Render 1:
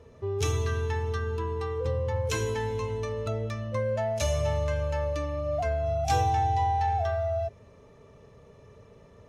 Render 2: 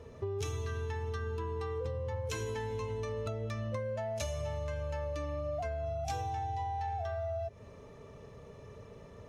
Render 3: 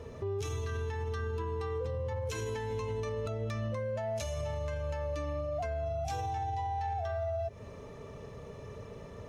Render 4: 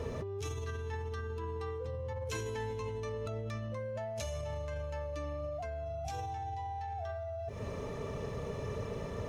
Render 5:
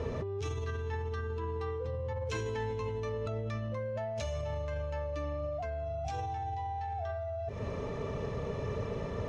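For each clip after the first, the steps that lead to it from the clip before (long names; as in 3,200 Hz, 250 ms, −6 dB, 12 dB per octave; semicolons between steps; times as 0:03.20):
downward compressor 12 to 1, threshold −35 dBFS, peak gain reduction 15 dB; level +2 dB
brickwall limiter −33 dBFS, peak gain reduction 8 dB; level +5 dB
compressor whose output falls as the input rises −40 dBFS, ratio −1; level +2 dB
high-frequency loss of the air 89 metres; level +3 dB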